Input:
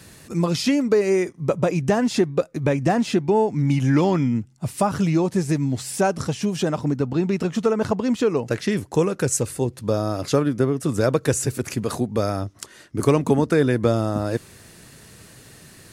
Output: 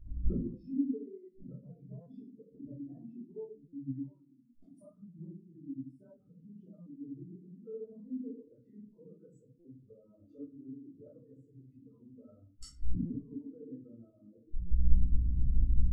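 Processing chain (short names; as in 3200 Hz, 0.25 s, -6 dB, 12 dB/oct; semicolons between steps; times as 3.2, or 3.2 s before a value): notch comb 810 Hz; backlash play -33 dBFS; 1.56–2.55 ripple EQ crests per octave 1.7, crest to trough 10 dB; compressor 4:1, threshold -28 dBFS, peak gain reduction 13.5 dB; hum 60 Hz, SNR 23 dB; flipped gate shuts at -34 dBFS, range -29 dB; 3.9–4.79 tilt +4 dB/oct; reverb RT60 1.0 s, pre-delay 3 ms, DRR -10 dB; stuck buffer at 2.01/3.68/6.81/9.59/13.05/14.65, samples 256, times 8; spectral expander 2.5:1; gain +10 dB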